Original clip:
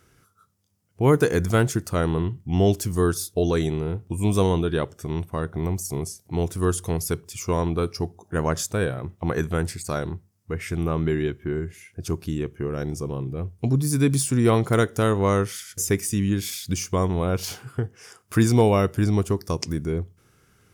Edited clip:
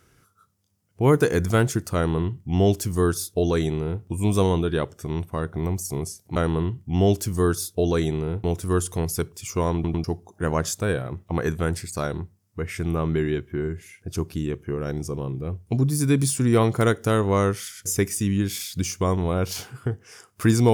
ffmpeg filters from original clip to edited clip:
-filter_complex "[0:a]asplit=6[s0][s1][s2][s3][s4][s5];[s0]atrim=end=6.362[s6];[s1]atrim=start=1.948:end=4.032[s7];[s2]atrim=start=6.358:end=7.762[s8];[s3]atrim=start=7.658:end=7.762[s9];[s4]atrim=start=7.658:end=7.762[s10];[s5]atrim=start=7.958[s11];[s6][s7]acrossfade=d=0.004:c1=hsin:c2=hsin[s12];[s12][s8]acrossfade=d=0.004:c1=hsin:c2=hsin[s13];[s13][s9]acrossfade=d=0.004:c1=hsin:c2=hsin[s14];[s14][s10]acrossfade=d=0.004:c1=hsin:c2=hsin[s15];[s15][s11]acrossfade=d=0.004:c1=hsin:c2=hsin"

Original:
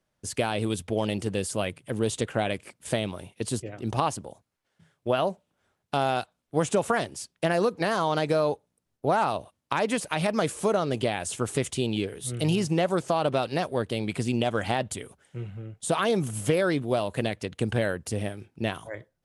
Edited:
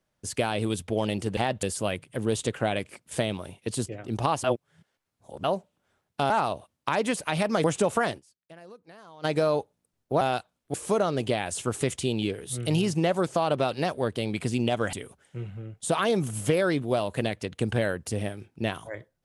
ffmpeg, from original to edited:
-filter_complex "[0:a]asplit=12[s0][s1][s2][s3][s4][s5][s6][s7][s8][s9][s10][s11];[s0]atrim=end=1.372[s12];[s1]atrim=start=14.668:end=14.932[s13];[s2]atrim=start=1.368:end=4.182[s14];[s3]atrim=start=4.178:end=5.182,asetpts=PTS-STARTPTS,areverse[s15];[s4]atrim=start=5.178:end=6.042[s16];[s5]atrim=start=9.138:end=10.482[s17];[s6]atrim=start=6.568:end=7.23,asetpts=PTS-STARTPTS,afade=t=out:st=0.542:d=0.12:c=exp:silence=0.0668344[s18];[s7]atrim=start=7.23:end=8.06,asetpts=PTS-STARTPTS,volume=0.0668[s19];[s8]atrim=start=8.06:end=9.142,asetpts=PTS-STARTPTS,afade=t=in:d=0.12:c=exp:silence=0.0668344[s20];[s9]atrim=start=6.038:end=6.572[s21];[s10]atrim=start=10.478:end=14.672[s22];[s11]atrim=start=14.928[s23];[s12][s13]acrossfade=d=0.004:c1=hsin:c2=hsin[s24];[s24][s14]acrossfade=d=0.004:c1=hsin:c2=hsin[s25];[s25][s15]acrossfade=d=0.004:c1=hsin:c2=hsin[s26];[s26][s16]acrossfade=d=0.004:c1=hsin:c2=hsin[s27];[s27][s17]acrossfade=d=0.004:c1=hsin:c2=hsin[s28];[s18][s19][s20]concat=n=3:v=0:a=1[s29];[s28][s29]acrossfade=d=0.004:c1=hsin:c2=hsin[s30];[s30][s21]acrossfade=d=0.004:c1=hsin:c2=hsin[s31];[s31][s22]acrossfade=d=0.004:c1=hsin:c2=hsin[s32];[s32][s23]acrossfade=d=0.004:c1=hsin:c2=hsin"

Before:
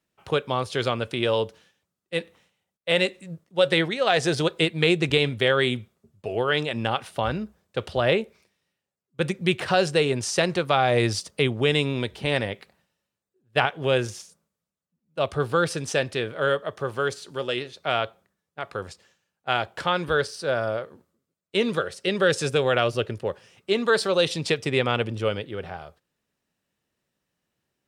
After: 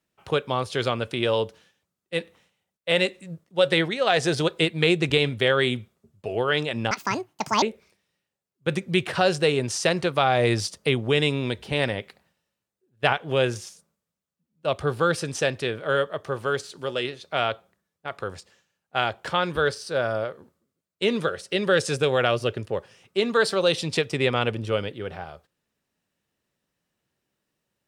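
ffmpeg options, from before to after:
-filter_complex "[0:a]asplit=3[s0][s1][s2];[s0]atrim=end=6.914[s3];[s1]atrim=start=6.91:end=8.15,asetpts=PTS-STARTPTS,asetrate=76734,aresample=44100[s4];[s2]atrim=start=8.146[s5];[s3][s4]acrossfade=d=0.004:c1=hsin:c2=hsin[s6];[s6][s5]acrossfade=d=0.004:c1=hsin:c2=hsin"

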